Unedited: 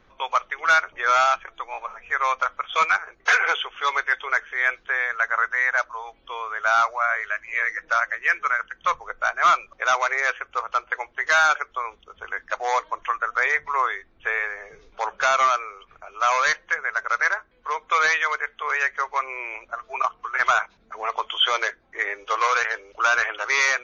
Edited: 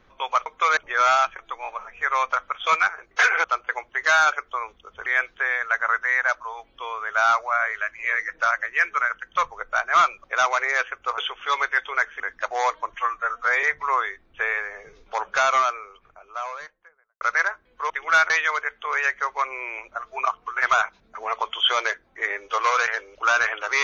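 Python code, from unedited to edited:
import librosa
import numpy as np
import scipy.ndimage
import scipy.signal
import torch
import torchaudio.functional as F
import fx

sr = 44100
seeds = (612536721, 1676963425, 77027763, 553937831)

y = fx.studio_fade_out(x, sr, start_s=15.21, length_s=1.86)
y = fx.edit(y, sr, fx.swap(start_s=0.46, length_s=0.4, other_s=17.76, other_length_s=0.31),
    fx.swap(start_s=3.53, length_s=1.02, other_s=10.67, other_length_s=1.62),
    fx.stretch_span(start_s=13.03, length_s=0.46, factor=1.5), tone=tone)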